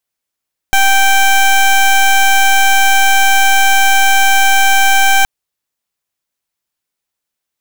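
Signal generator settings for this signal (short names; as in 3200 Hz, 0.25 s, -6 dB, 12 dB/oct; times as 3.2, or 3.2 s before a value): pulse 782 Hz, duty 17% -8.5 dBFS 4.52 s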